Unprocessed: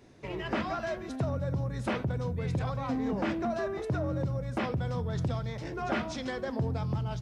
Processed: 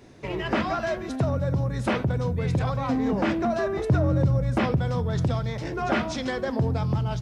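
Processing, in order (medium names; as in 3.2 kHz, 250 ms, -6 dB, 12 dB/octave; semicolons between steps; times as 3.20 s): 3.73–4.76 s: bass shelf 170 Hz +6.5 dB; trim +6.5 dB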